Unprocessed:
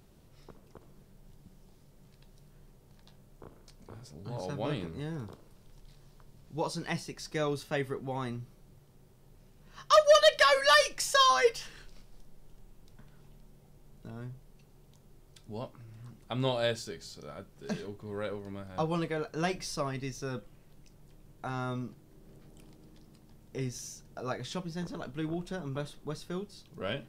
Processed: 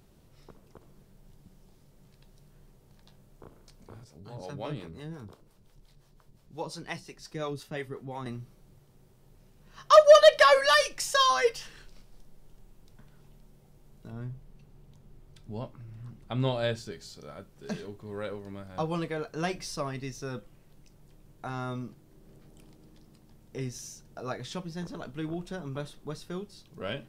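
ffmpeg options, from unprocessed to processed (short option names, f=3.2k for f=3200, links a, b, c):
-filter_complex "[0:a]asettb=1/sr,asplit=3[a][b][c];[a]atrim=end=4.044[d];[b]atrim=start=4.04:end=8.26,asetpts=PTS-STARTPTS,afade=t=in:d=0.004:c=qsin,afade=t=out:st=4.216:d=0.004:c=qsin,acrossover=split=400[e][f];[e]aeval=exprs='val(0)*(1-0.7/2+0.7/2*cos(2*PI*5.7*n/s))':c=same[g];[f]aeval=exprs='val(0)*(1-0.7/2-0.7/2*cos(2*PI*5.7*n/s))':c=same[h];[g][h]amix=inputs=2:normalize=0[i];[c]atrim=start=8.256[j];[d][i]acrossfade=d=0.004:c1=hsin:c2=qsin[k];[k][j]acrossfade=d=0.004:c1=qsin:c2=hsin,asettb=1/sr,asplit=3[l][m][n];[l]atrim=end=9.854[o];[m]atrim=start=9.85:end=10.66,asetpts=PTS-STARTPTS,afade=t=in:d=0.004:c=qsin,afade=t=out:st=0.806:d=0.004:c=qsin,equalizer=f=740:t=o:w=1.9:g=6.5[p];[n]atrim=start=10.656[q];[o][p]acrossfade=d=0.004:c1=hsin:c2=qsin[r];[r][q]acrossfade=d=0.004:c1=qsin:c2=hsin,asettb=1/sr,asplit=3[s][t][u];[s]atrim=end=14.124[v];[t]atrim=start=14.12:end=16.92,asetpts=PTS-STARTPTS,afade=t=in:d=0.004:c=qsin,afade=t=out:st=2.796:d=0.004:c=qsin,bass=f=250:g=5,treble=f=4k:g=-5[w];[u]atrim=start=16.916[x];[v][w]acrossfade=d=0.004:c1=hsin:c2=qsin[y];[y][x]acrossfade=d=0.004:c1=qsin:c2=hsin"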